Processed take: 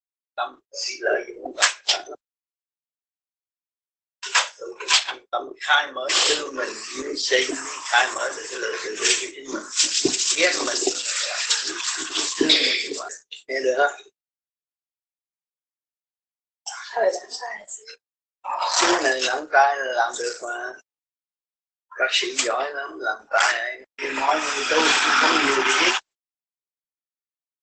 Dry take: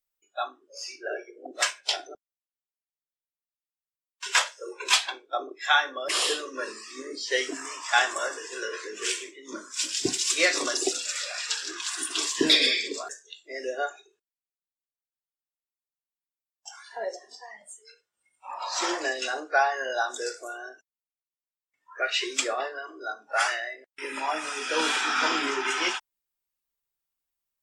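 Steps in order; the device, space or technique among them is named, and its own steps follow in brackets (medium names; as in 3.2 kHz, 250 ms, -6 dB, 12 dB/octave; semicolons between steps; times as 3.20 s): 19.56–20.68 s: dynamic bell 790 Hz, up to +4 dB, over -33 dBFS, Q 1.8; video call (high-pass 170 Hz 12 dB/octave; level rider gain up to 16 dB; gate -37 dBFS, range -57 dB; trim -3.5 dB; Opus 12 kbps 48 kHz)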